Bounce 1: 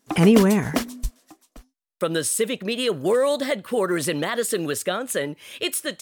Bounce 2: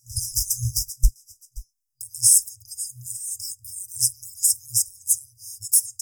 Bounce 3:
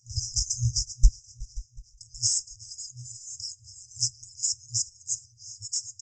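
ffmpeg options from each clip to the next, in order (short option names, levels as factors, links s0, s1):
-af "afftfilt=real='re*(1-between(b*sr/4096,120,4900))':imag='im*(1-between(b*sr/4096,120,4900))':win_size=4096:overlap=0.75,acontrast=79,volume=1.5"
-af "aresample=16000,aresample=44100,aecho=1:1:368|736|1104|1472:0.0794|0.0413|0.0215|0.0112"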